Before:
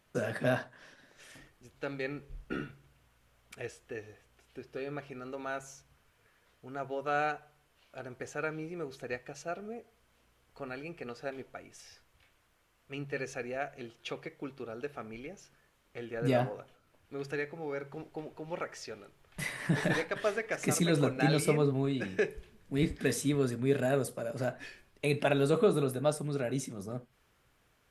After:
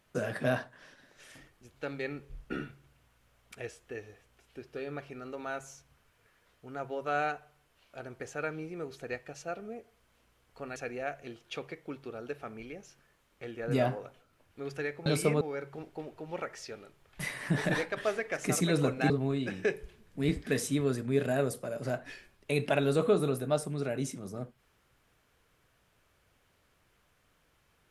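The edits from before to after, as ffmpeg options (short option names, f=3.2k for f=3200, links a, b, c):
-filter_complex "[0:a]asplit=5[a][b][c][d][e];[a]atrim=end=10.762[f];[b]atrim=start=13.298:end=17.602[g];[c]atrim=start=21.288:end=21.642[h];[d]atrim=start=17.598:end=21.292[i];[e]atrim=start=21.638[j];[f][g]acrossfade=d=0.004:c1=hsin:c2=hsin[k];[k][h]acrossfade=d=0.004:c1=hsin:c2=hsin[l];[l][i]acrossfade=d=0.004:c1=hsin:c2=hsin[m];[m][j]acrossfade=d=0.004:c1=hsin:c2=hsin"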